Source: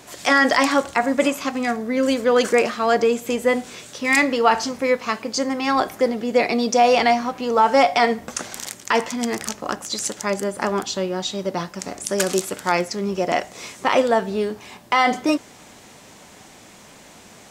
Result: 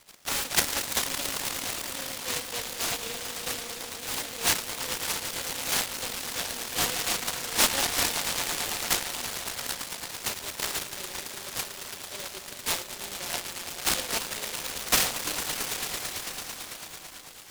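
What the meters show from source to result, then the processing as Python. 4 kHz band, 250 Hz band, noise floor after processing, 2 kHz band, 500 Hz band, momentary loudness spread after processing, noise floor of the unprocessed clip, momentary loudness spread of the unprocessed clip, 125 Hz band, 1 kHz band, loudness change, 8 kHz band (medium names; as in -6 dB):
0.0 dB, -19.5 dB, -44 dBFS, -9.5 dB, -19.5 dB, 11 LU, -46 dBFS, 11 LU, -8.0 dB, -15.5 dB, -8.5 dB, +2.5 dB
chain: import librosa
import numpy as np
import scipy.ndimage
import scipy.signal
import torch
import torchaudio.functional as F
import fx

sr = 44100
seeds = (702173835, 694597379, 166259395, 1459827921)

y = fx.bandpass_q(x, sr, hz=990.0, q=7.7)
y = fx.echo_swell(y, sr, ms=111, loudest=5, wet_db=-11.0)
y = fx.noise_mod_delay(y, sr, seeds[0], noise_hz=3200.0, depth_ms=0.35)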